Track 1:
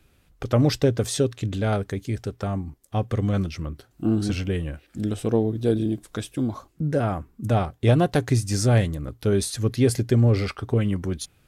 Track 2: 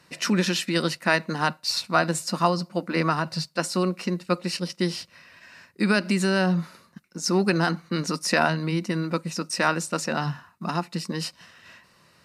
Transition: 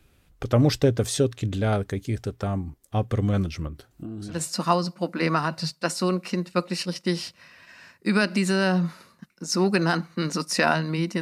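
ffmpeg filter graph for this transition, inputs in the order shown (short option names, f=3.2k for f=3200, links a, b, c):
-filter_complex "[0:a]asettb=1/sr,asplit=3[a][b][c];[a]atrim=end=3.674[d];[b]atrim=start=3.67:end=4.42,asetpts=PTS-STARTPTS,afade=t=in:d=0.004:c=qsin,afade=t=out:st=0.746:d=0.004:c=qsin,acompressor=threshold=-32dB:ratio=8:attack=3.2:release=140:knee=1:detection=peak[e];[c]atrim=start=4.416[f];[d][e]acrossfade=d=0.004:c1=hsin:c2=qsin[g];[g][f]acrossfade=d=0.004:c1=qsin:c2=hsin,apad=whole_dur=11.21,atrim=end=11.21,atrim=end=4.42,asetpts=PTS-STARTPTS[h];[1:a]atrim=start=2.02:end=8.95,asetpts=PTS-STARTPTS[i];[h][i]acrossfade=d=0.14:c1=tri:c2=tri"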